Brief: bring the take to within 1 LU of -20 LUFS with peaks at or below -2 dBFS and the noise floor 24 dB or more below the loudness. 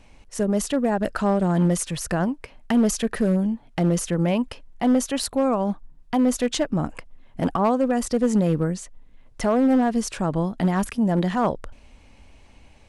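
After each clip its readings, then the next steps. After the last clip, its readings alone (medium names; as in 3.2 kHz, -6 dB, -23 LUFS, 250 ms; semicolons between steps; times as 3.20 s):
clipped samples 1.1%; clipping level -13.0 dBFS; loudness -23.0 LUFS; peak level -13.0 dBFS; loudness target -20.0 LUFS
-> clip repair -13 dBFS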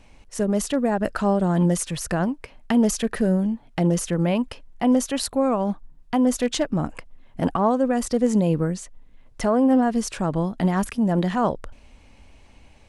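clipped samples 0.0%; loudness -22.5 LUFS; peak level -8.0 dBFS; loudness target -20.0 LUFS
-> trim +2.5 dB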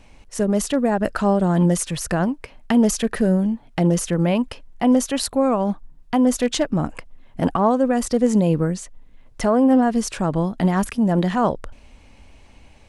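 loudness -20.0 LUFS; peak level -5.5 dBFS; noise floor -49 dBFS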